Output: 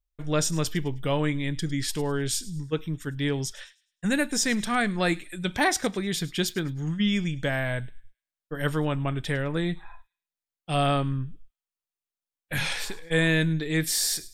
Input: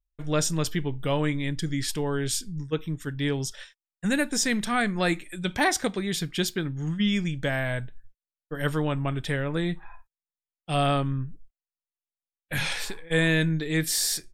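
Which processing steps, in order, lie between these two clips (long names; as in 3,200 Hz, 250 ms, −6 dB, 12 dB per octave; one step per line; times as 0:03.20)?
delay with a high-pass on its return 104 ms, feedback 32%, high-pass 2,800 Hz, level −17.5 dB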